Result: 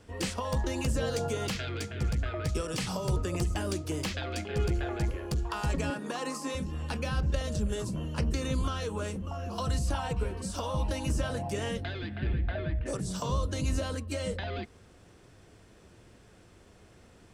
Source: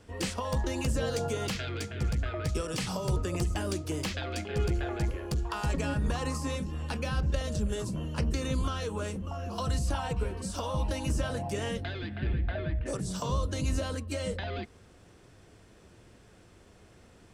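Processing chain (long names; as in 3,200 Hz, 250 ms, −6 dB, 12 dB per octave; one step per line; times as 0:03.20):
0:05.90–0:06.55: high-pass filter 220 Hz 24 dB per octave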